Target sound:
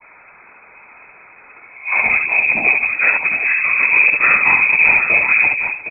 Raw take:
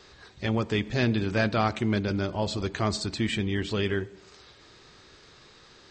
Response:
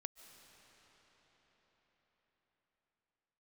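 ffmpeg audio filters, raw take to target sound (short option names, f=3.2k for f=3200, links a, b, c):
-filter_complex "[0:a]areverse,adynamicequalizer=threshold=0.00891:dfrequency=850:dqfactor=1.3:tfrequency=850:tqfactor=1.3:attack=5:release=100:ratio=0.375:range=2:mode=cutabove:tftype=bell,aeval=exprs='0.237*(cos(1*acos(clip(val(0)/0.237,-1,1)))-cos(1*PI/2))+0.0335*(cos(4*acos(clip(val(0)/0.237,-1,1)))-cos(4*PI/2))':c=same,asubboost=boost=2.5:cutoff=100,afftfilt=real='hypot(re,im)*cos(2*PI*random(0))':imag='hypot(re,im)*sin(2*PI*random(1))':win_size=512:overlap=0.75,asplit=2[a][b];[b]aecho=0:1:63|69|355|762:0.133|0.562|0.1|0.355[c];[a][c]amix=inputs=2:normalize=0,lowpass=f=2.2k:t=q:w=0.5098,lowpass=f=2.2k:t=q:w=0.6013,lowpass=f=2.2k:t=q:w=0.9,lowpass=f=2.2k:t=q:w=2.563,afreqshift=-2600,alimiter=level_in=18dB:limit=-1dB:release=50:level=0:latency=1,volume=-1dB"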